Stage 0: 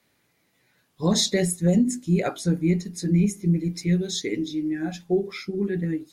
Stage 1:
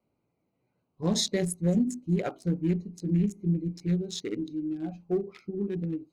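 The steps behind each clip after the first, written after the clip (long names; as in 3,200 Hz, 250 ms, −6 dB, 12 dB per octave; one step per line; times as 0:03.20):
adaptive Wiener filter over 25 samples
level −5 dB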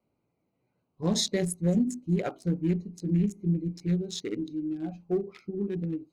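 no processing that can be heard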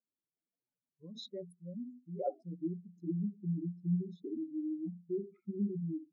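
expanding power law on the bin magnitudes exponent 2.9
band-pass filter sweep 2,100 Hz → 230 Hz, 0:00.13–0:03.79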